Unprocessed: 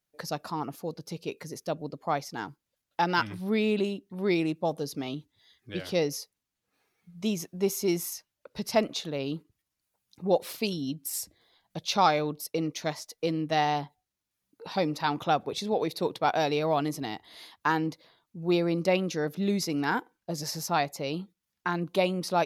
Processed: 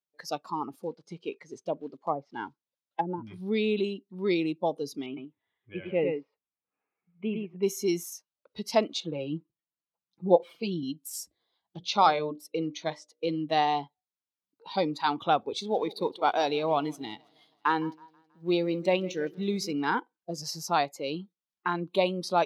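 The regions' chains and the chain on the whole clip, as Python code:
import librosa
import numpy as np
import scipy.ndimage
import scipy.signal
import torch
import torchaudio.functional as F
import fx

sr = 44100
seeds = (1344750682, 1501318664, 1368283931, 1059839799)

y = fx.chain(x, sr, fx.block_float(bits=5),
    fx.env_lowpass_down(base_hz=330.0, full_db=-22.0), at=(0.74, 3.27))
y = fx.chain(y, sr, fx.cheby1_lowpass(hz=2600.0, order=4),
    fx.echo_single(ms=106, db=-4.0), at=(5.06, 7.63))
y = fx.chain(y, sr, fx.lowpass(hz=1600.0, slope=6),
    fx.comb(ms=5.9, depth=0.73), at=(9.0, 10.83))
y = fx.chain(y, sr, fx.high_shelf(hz=7300.0, db=-9.5),
    fx.hum_notches(base_hz=60, count=10), at=(11.77, 13.3))
y = fx.chain(y, sr, fx.law_mismatch(coded='A'),
    fx.echo_feedback(ms=161, feedback_pct=56, wet_db=-17.0), at=(15.58, 19.73))
y = fx.weighting(y, sr, curve='D')
y = fx.noise_reduce_blind(y, sr, reduce_db=13)
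y = fx.high_shelf_res(y, sr, hz=1500.0, db=-9.0, q=1.5)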